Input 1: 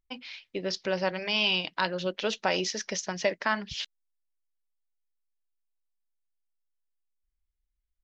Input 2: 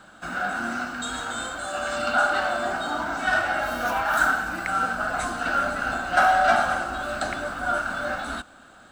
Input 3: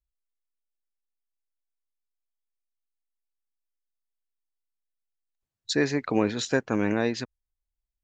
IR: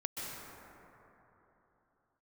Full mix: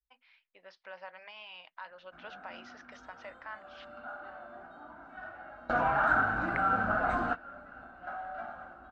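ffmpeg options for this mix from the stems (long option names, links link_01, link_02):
-filter_complex "[0:a]highpass=760,alimiter=limit=-21.5dB:level=0:latency=1:release=18,volume=-12.5dB[link_01];[1:a]adelay=1900,volume=-2dB[link_02];[2:a]equalizer=frequency=95:width=0.77:gain=14,asplit=2[link_03][link_04];[link_04]adelay=4,afreqshift=-0.52[link_05];[link_03][link_05]amix=inputs=2:normalize=1,volume=-13dB,asplit=2[link_06][link_07];[link_07]apad=whole_len=476957[link_08];[link_02][link_08]sidechaingate=range=-25dB:threshold=-57dB:ratio=16:detection=peak[link_09];[link_01][link_06]amix=inputs=2:normalize=0,equalizer=frequency=360:width_type=o:width=0.87:gain=-12,alimiter=level_in=11dB:limit=-24dB:level=0:latency=1:release=450,volume=-11dB,volume=0dB[link_10];[link_09][link_10]amix=inputs=2:normalize=0,dynaudnorm=framelen=440:gausssize=3:maxgain=6dB,lowpass=1600,acompressor=threshold=-35dB:ratio=1.5"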